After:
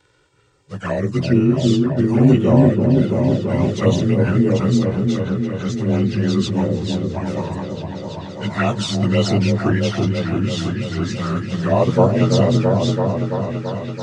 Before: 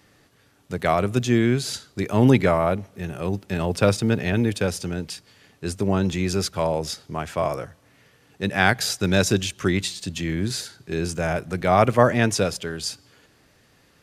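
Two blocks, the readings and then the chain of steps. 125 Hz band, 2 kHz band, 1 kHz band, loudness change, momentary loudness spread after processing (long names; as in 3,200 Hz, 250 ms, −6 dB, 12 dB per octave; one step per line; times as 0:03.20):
+8.0 dB, −3.5 dB, −1.0 dB, +4.5 dB, 11 LU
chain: partials spread apart or drawn together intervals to 90%
flanger swept by the level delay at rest 2.2 ms, full sweep at −15.5 dBFS
echo whose low-pass opens from repeat to repeat 334 ms, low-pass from 400 Hz, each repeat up 1 octave, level 0 dB
level +4.5 dB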